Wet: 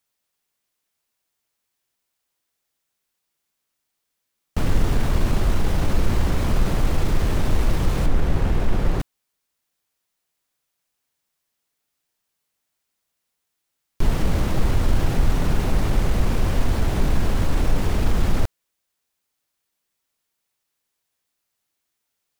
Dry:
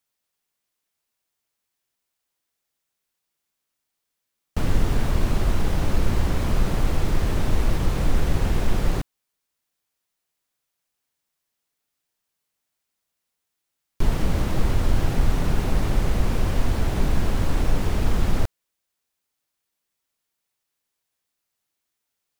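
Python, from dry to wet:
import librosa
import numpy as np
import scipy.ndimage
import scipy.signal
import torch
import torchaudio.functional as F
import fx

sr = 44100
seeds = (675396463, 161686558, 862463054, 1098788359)

p1 = fx.high_shelf(x, sr, hz=3500.0, db=-9.0, at=(8.06, 9.0))
p2 = np.clip(10.0 ** (20.0 / 20.0) * p1, -1.0, 1.0) / 10.0 ** (20.0 / 20.0)
y = p1 + F.gain(torch.from_numpy(p2), -10.0).numpy()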